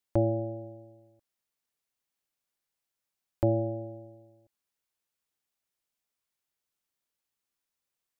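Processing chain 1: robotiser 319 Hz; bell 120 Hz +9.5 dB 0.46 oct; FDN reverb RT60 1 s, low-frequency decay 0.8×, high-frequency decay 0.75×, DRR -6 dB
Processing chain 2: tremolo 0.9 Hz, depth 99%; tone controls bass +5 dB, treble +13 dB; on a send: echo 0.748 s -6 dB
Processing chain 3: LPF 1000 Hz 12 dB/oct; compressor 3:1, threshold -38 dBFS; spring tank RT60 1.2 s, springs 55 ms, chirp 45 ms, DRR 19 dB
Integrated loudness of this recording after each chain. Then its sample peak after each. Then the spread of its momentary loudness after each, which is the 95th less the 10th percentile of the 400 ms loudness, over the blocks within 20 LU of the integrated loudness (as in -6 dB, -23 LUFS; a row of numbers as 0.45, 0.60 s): -25.0, -33.0, -42.5 LUFS; -10.5, -12.0, -20.5 dBFS; 17, 15, 18 LU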